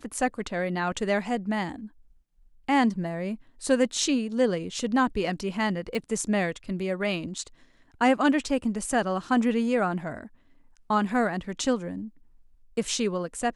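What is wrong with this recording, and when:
0:05.95: click −20 dBFS

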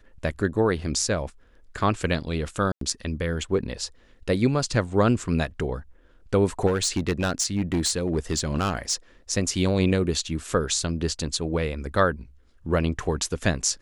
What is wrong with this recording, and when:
0:02.72–0:02.81: drop-out 93 ms
0:06.66–0:08.95: clipping −18.5 dBFS

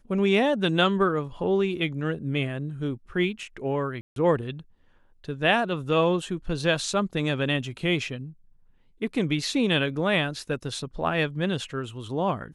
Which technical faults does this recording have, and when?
0:04.01–0:04.16: drop-out 152 ms

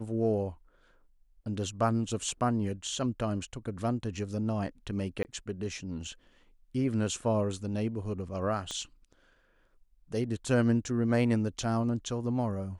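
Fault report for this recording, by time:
0:05.23–0:05.25: drop-out 19 ms
0:08.71: click −23 dBFS

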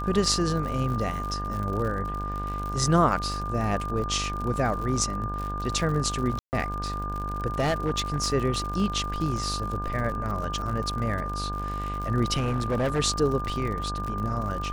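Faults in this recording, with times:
mains buzz 50 Hz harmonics 34 −33 dBFS
surface crackle 70 per second −32 dBFS
whistle 1,200 Hz −32 dBFS
0:06.39–0:06.53: drop-out 139 ms
0:07.59–0:08.28: clipping −20 dBFS
0:12.36–0:13.00: clipping −21.5 dBFS

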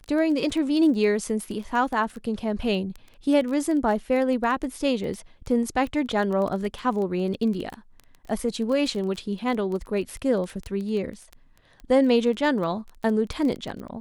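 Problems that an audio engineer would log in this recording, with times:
surface crackle 14 per second −29 dBFS

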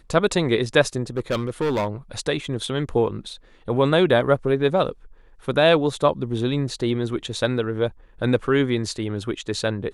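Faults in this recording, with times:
0:01.17–0:01.88: clipping −18.5 dBFS

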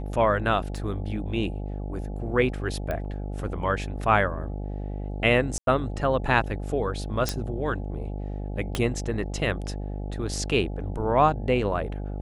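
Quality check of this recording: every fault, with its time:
mains buzz 50 Hz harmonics 17 −32 dBFS
0:00.77: drop-out 2.2 ms
0:02.91: click −18 dBFS
0:05.58–0:05.67: drop-out 92 ms
0:07.29: click −9 dBFS
0:08.75: click −13 dBFS

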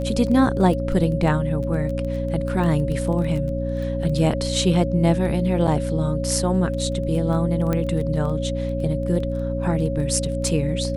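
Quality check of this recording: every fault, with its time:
surface crackle 11 per second −28 dBFS
mains hum 60 Hz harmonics 5 −26 dBFS
whistle 550 Hz −27 dBFS
0:05.67–0:05.68: drop-out 6.2 ms
0:07.73: click −11 dBFS

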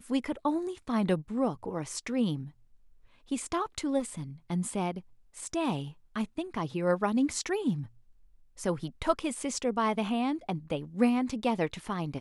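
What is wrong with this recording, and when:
0:03.99–0:04.23: clipping −31.5 dBFS

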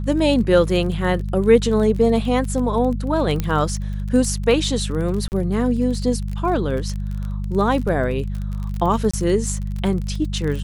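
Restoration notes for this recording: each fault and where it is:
surface crackle 27 per second −26 dBFS
mains hum 50 Hz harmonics 4 −25 dBFS
0:03.40: click −9 dBFS
0:05.28–0:05.32: drop-out 39 ms
0:09.11–0:09.13: drop-out 25 ms

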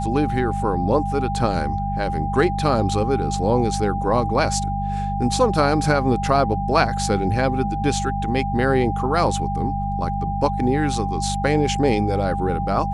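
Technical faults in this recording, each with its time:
mains hum 50 Hz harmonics 4 −26 dBFS
whistle 800 Hz −25 dBFS

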